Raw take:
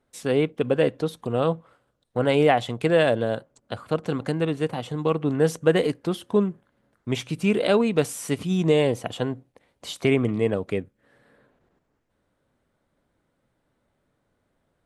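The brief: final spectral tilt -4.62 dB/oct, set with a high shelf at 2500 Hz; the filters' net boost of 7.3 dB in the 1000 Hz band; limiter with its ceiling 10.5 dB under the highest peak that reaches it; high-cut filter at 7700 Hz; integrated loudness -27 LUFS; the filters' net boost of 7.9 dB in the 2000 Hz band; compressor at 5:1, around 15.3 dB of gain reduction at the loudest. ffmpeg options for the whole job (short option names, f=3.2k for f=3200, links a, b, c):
-af "lowpass=7.7k,equalizer=f=1k:t=o:g=8.5,equalizer=f=2k:t=o:g=4,highshelf=f=2.5k:g=7,acompressor=threshold=-27dB:ratio=5,volume=7dB,alimiter=limit=-14dB:level=0:latency=1"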